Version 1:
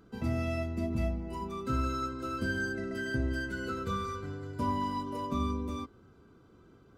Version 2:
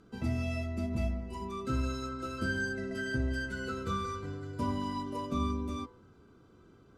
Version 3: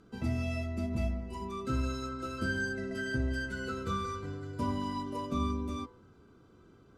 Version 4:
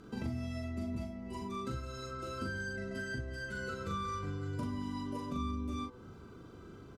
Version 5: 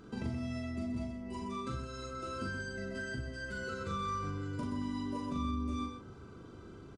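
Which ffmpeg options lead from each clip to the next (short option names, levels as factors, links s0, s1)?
-af "lowpass=10000,highshelf=f=7500:g=4,bandreject=f=54.97:t=h:w=4,bandreject=f=109.94:t=h:w=4,bandreject=f=164.91:t=h:w=4,bandreject=f=219.88:t=h:w=4,bandreject=f=274.85:t=h:w=4,bandreject=f=329.82:t=h:w=4,bandreject=f=384.79:t=h:w=4,bandreject=f=439.76:t=h:w=4,bandreject=f=494.73:t=h:w=4,bandreject=f=549.7:t=h:w=4,bandreject=f=604.67:t=h:w=4,bandreject=f=659.64:t=h:w=4,bandreject=f=714.61:t=h:w=4,bandreject=f=769.58:t=h:w=4,bandreject=f=824.55:t=h:w=4,bandreject=f=879.52:t=h:w=4,bandreject=f=934.49:t=h:w=4,bandreject=f=989.46:t=h:w=4,bandreject=f=1044.43:t=h:w=4,bandreject=f=1099.4:t=h:w=4,bandreject=f=1154.37:t=h:w=4,bandreject=f=1209.34:t=h:w=4,bandreject=f=1264.31:t=h:w=4,bandreject=f=1319.28:t=h:w=4,bandreject=f=1374.25:t=h:w=4,bandreject=f=1429.22:t=h:w=4,bandreject=f=1484.19:t=h:w=4,bandreject=f=1539.16:t=h:w=4,bandreject=f=1594.13:t=h:w=4,bandreject=f=1649.1:t=h:w=4,bandreject=f=1704.07:t=h:w=4,bandreject=f=1759.04:t=h:w=4,bandreject=f=1814.01:t=h:w=4,bandreject=f=1868.98:t=h:w=4,bandreject=f=1923.95:t=h:w=4,bandreject=f=1978.92:t=h:w=4,bandreject=f=2033.89:t=h:w=4,bandreject=f=2088.86:t=h:w=4,bandreject=f=2143.83:t=h:w=4,bandreject=f=2198.8:t=h:w=4"
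-af anull
-filter_complex "[0:a]acompressor=threshold=0.00631:ratio=5,asplit=2[s0][s1];[s1]adelay=40,volume=0.708[s2];[s0][s2]amix=inputs=2:normalize=0,volume=1.88"
-af "aresample=22050,aresample=44100,aecho=1:1:126:0.398"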